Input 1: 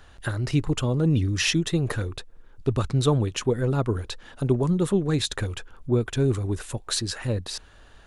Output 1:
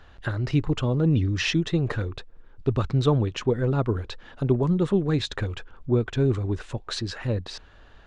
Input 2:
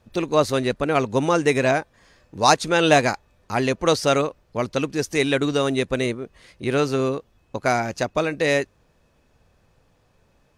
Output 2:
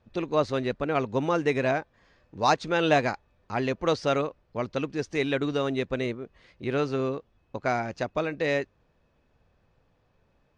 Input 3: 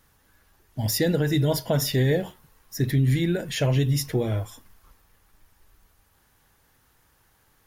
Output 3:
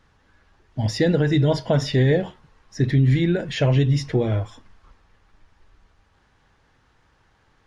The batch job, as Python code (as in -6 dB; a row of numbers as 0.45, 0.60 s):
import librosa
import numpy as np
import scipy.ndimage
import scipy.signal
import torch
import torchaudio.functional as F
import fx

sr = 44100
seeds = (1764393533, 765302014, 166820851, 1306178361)

y = scipy.ndimage.gaussian_filter1d(x, 1.6, mode='constant')
y = y * 10.0 ** (-9 / 20.0) / np.max(np.abs(y))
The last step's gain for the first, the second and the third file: +0.5, -5.5, +4.0 dB